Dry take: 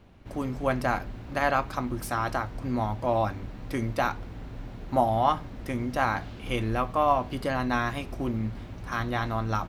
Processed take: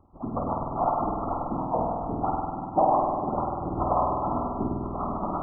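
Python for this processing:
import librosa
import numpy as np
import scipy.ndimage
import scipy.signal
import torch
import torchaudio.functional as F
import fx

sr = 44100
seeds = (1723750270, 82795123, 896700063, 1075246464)

p1 = fx.spec_dropout(x, sr, seeds[0], share_pct=28)
p2 = fx.hum_notches(p1, sr, base_hz=50, count=10)
p3 = fx.stretch_vocoder_free(p2, sr, factor=0.56)
p4 = fx.fixed_phaser(p3, sr, hz=460.0, stages=6)
p5 = fx.whisperise(p4, sr, seeds[1])
p6 = fx.brickwall_lowpass(p5, sr, high_hz=1400.0)
p7 = p6 + fx.echo_single(p6, sr, ms=1037, db=-10.5, dry=0)
p8 = fx.rev_spring(p7, sr, rt60_s=2.0, pass_ms=(49,), chirp_ms=75, drr_db=-1.0)
y = F.gain(torch.from_numpy(p8), 4.5).numpy()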